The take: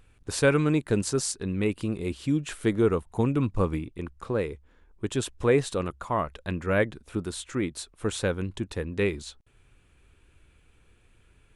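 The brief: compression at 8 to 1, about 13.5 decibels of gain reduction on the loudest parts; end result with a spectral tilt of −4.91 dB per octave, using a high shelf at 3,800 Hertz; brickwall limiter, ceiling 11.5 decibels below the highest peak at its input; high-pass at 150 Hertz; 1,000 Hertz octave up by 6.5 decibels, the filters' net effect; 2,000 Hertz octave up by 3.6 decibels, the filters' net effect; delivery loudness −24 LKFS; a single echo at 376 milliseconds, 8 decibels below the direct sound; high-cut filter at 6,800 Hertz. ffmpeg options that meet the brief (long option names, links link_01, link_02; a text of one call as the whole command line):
ffmpeg -i in.wav -af "highpass=150,lowpass=6800,equalizer=frequency=1000:width_type=o:gain=7.5,equalizer=frequency=2000:width_type=o:gain=3,highshelf=frequency=3800:gain=-5,acompressor=threshold=-29dB:ratio=8,alimiter=level_in=1.5dB:limit=-24dB:level=0:latency=1,volume=-1.5dB,aecho=1:1:376:0.398,volume=14dB" out.wav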